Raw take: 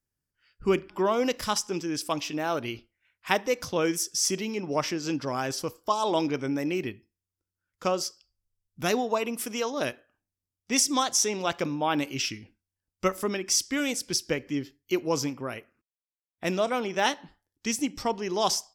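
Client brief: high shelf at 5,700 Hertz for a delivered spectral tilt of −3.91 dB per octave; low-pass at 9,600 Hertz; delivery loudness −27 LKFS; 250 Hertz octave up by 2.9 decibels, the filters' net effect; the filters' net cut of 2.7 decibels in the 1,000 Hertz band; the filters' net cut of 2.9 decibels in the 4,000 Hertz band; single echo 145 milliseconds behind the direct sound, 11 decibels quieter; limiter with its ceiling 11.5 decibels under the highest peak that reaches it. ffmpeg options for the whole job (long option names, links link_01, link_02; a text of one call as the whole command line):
ffmpeg -i in.wav -af "lowpass=9600,equalizer=frequency=250:width_type=o:gain=4,equalizer=frequency=1000:width_type=o:gain=-3.5,equalizer=frequency=4000:width_type=o:gain=-6.5,highshelf=frequency=5700:gain=4,alimiter=limit=-20.5dB:level=0:latency=1,aecho=1:1:145:0.282,volume=3.5dB" out.wav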